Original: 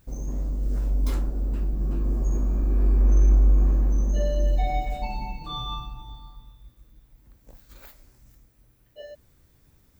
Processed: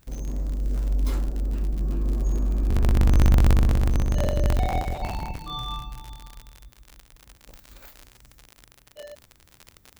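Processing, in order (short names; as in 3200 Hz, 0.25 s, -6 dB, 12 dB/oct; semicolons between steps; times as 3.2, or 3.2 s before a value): 2.67–5.39 cycle switcher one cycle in 3, inverted; crackle 62/s -30 dBFS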